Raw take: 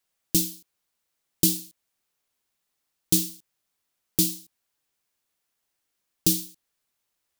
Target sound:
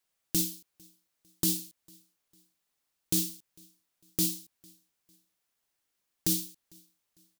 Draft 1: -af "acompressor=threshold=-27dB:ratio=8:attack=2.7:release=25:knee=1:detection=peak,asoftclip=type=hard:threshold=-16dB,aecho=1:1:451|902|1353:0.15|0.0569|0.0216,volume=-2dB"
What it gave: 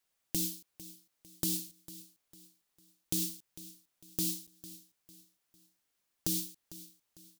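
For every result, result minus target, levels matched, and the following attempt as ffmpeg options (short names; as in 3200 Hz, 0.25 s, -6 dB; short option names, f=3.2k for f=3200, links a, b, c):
echo-to-direct +12 dB; compressor: peak gain reduction +6 dB
-af "acompressor=threshold=-27dB:ratio=8:attack=2.7:release=25:knee=1:detection=peak,asoftclip=type=hard:threshold=-16dB,aecho=1:1:451|902:0.0376|0.0143,volume=-2dB"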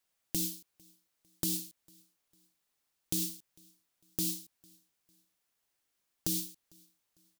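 compressor: peak gain reduction +6 dB
-af "acompressor=threshold=-20dB:ratio=8:attack=2.7:release=25:knee=1:detection=peak,asoftclip=type=hard:threshold=-16dB,aecho=1:1:451|902:0.0376|0.0143,volume=-2dB"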